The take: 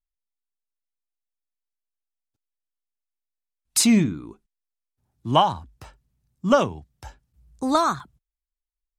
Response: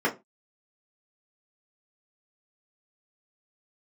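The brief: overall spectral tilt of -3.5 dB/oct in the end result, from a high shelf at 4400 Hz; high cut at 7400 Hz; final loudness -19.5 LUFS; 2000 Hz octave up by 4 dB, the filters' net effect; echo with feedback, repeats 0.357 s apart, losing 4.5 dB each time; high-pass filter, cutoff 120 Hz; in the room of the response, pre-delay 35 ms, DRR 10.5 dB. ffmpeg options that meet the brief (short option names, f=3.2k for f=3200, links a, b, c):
-filter_complex "[0:a]highpass=120,lowpass=7.4k,equalizer=f=2k:t=o:g=4,highshelf=f=4.4k:g=7.5,aecho=1:1:357|714|1071|1428|1785|2142|2499|2856|3213:0.596|0.357|0.214|0.129|0.0772|0.0463|0.0278|0.0167|0.01,asplit=2[a][b];[1:a]atrim=start_sample=2205,adelay=35[c];[b][c]afir=irnorm=-1:irlink=0,volume=-23.5dB[d];[a][d]amix=inputs=2:normalize=0,volume=2dB"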